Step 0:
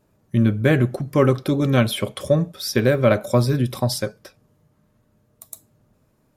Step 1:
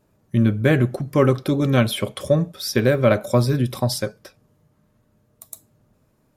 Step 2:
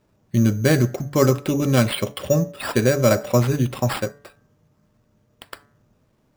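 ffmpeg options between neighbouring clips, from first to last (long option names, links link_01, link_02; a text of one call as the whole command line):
ffmpeg -i in.wav -af anull out.wav
ffmpeg -i in.wav -af "acrusher=samples=7:mix=1:aa=0.000001,bandreject=frequency=143.6:width_type=h:width=4,bandreject=frequency=287.2:width_type=h:width=4,bandreject=frequency=430.8:width_type=h:width=4,bandreject=frequency=574.4:width_type=h:width=4,bandreject=frequency=718:width_type=h:width=4,bandreject=frequency=861.6:width_type=h:width=4,bandreject=frequency=1005.2:width_type=h:width=4,bandreject=frequency=1148.8:width_type=h:width=4,bandreject=frequency=1292.4:width_type=h:width=4,bandreject=frequency=1436:width_type=h:width=4,bandreject=frequency=1579.6:width_type=h:width=4,bandreject=frequency=1723.2:width_type=h:width=4,bandreject=frequency=1866.8:width_type=h:width=4,bandreject=frequency=2010.4:width_type=h:width=4" out.wav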